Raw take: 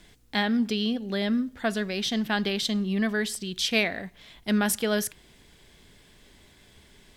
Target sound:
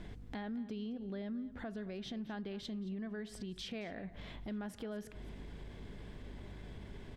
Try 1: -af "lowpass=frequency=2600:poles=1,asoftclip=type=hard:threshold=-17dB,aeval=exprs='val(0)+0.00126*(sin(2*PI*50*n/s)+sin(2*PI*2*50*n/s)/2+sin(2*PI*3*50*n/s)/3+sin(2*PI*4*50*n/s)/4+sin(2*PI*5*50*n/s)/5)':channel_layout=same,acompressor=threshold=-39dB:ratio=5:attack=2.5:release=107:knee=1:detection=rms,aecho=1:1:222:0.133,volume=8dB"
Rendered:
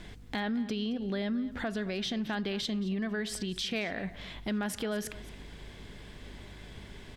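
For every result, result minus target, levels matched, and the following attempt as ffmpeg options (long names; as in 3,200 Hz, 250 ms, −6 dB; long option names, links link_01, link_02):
downward compressor: peak gain reduction −8.5 dB; 2,000 Hz band +3.0 dB
-af "lowpass=frequency=2600:poles=1,asoftclip=type=hard:threshold=-17dB,aeval=exprs='val(0)+0.00126*(sin(2*PI*50*n/s)+sin(2*PI*2*50*n/s)/2+sin(2*PI*3*50*n/s)/3+sin(2*PI*4*50*n/s)/4+sin(2*PI*5*50*n/s)/5)':channel_layout=same,acompressor=threshold=-50dB:ratio=5:attack=2.5:release=107:knee=1:detection=rms,aecho=1:1:222:0.133,volume=8dB"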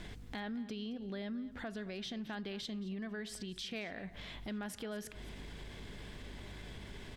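2,000 Hz band +4.0 dB
-af "lowpass=frequency=760:poles=1,asoftclip=type=hard:threshold=-17dB,aeval=exprs='val(0)+0.00126*(sin(2*PI*50*n/s)+sin(2*PI*2*50*n/s)/2+sin(2*PI*3*50*n/s)/3+sin(2*PI*4*50*n/s)/4+sin(2*PI*5*50*n/s)/5)':channel_layout=same,acompressor=threshold=-50dB:ratio=5:attack=2.5:release=107:knee=1:detection=rms,aecho=1:1:222:0.133,volume=8dB"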